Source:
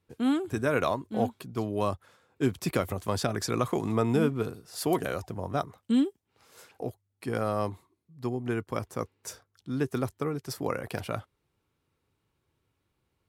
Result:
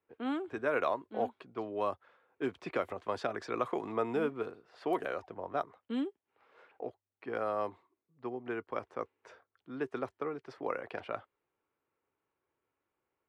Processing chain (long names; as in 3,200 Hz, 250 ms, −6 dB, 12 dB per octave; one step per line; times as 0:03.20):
three-way crossover with the lows and the highs turned down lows −18 dB, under 310 Hz, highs −16 dB, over 3,100 Hz
low-pass that shuts in the quiet parts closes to 2,600 Hz, open at −24.5 dBFS
level −3 dB